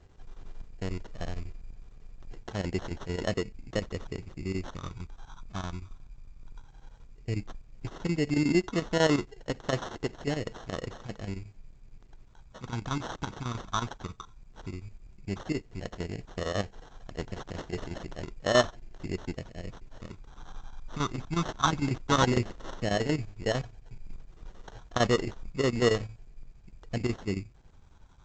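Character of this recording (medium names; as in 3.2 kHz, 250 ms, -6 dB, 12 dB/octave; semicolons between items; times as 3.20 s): phasing stages 4, 0.13 Hz, lowest notch 510–4000 Hz; aliases and images of a low sample rate 2.4 kHz, jitter 0%; chopped level 11 Hz, depth 65%, duty 75%; A-law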